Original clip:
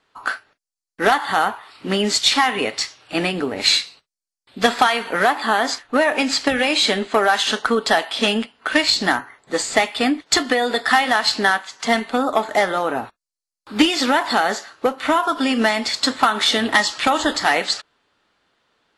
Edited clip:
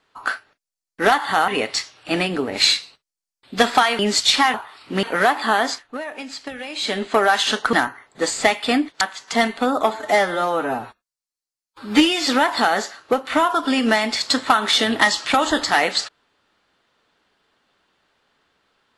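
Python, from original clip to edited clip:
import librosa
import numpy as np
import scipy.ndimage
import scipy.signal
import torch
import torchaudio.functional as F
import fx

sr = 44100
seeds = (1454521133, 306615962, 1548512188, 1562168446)

y = fx.edit(x, sr, fx.swap(start_s=1.48, length_s=0.49, other_s=2.52, other_length_s=2.51),
    fx.fade_down_up(start_s=5.61, length_s=1.49, db=-13.5, fade_s=0.37),
    fx.cut(start_s=7.73, length_s=1.32),
    fx.cut(start_s=10.33, length_s=1.2),
    fx.stretch_span(start_s=12.42, length_s=1.58, factor=1.5), tone=tone)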